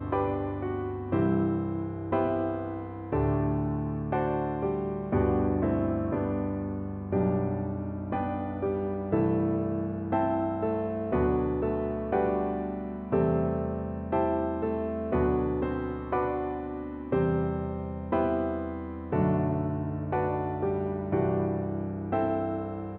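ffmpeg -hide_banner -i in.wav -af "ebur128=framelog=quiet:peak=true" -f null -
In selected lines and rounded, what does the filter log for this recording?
Integrated loudness:
  I:         -29.5 LUFS
  Threshold: -39.5 LUFS
Loudness range:
  LRA:         1.5 LU
  Threshold: -49.4 LUFS
  LRA low:   -30.1 LUFS
  LRA high:  -28.6 LUFS
True peak:
  Peak:      -13.9 dBFS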